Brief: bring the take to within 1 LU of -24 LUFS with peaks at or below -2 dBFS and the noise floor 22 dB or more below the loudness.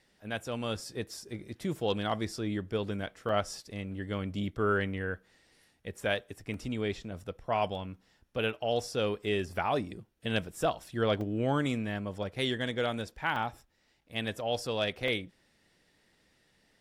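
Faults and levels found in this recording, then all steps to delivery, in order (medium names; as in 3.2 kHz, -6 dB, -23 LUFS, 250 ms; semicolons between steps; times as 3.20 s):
dropouts 5; longest dropout 2.3 ms; loudness -33.5 LUFS; peak level -16.0 dBFS; loudness target -24.0 LUFS
-> interpolate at 3.29/6.54/11.21/13.36/15.08 s, 2.3 ms; trim +9.5 dB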